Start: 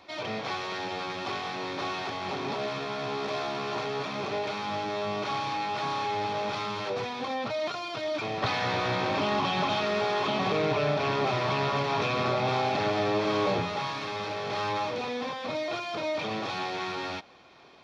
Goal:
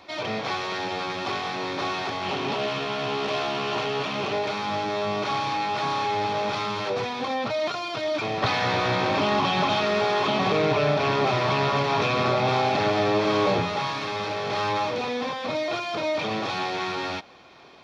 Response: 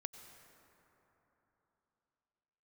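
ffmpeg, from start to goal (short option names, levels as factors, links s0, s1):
-filter_complex "[0:a]asettb=1/sr,asplit=3[s0][s1][s2];[s0]atrim=end=2.234[s3];[s1]atrim=start=2.23:end=4.33,asetpts=PTS-STARTPTS,afade=t=in:d=0.004:c=qsin,afade=t=out:st=2.096:d=0.004:c=qsin,equalizer=f=2900:w=6.6:g=10[s4];[s2]atrim=start=4.326[s5];[s3][s4]acrossfade=d=0.004:c1=hsin:c2=qsin[s6];[s6][s5]acrossfade=d=0.004:c1=qsin:c2=hsin,volume=1.68"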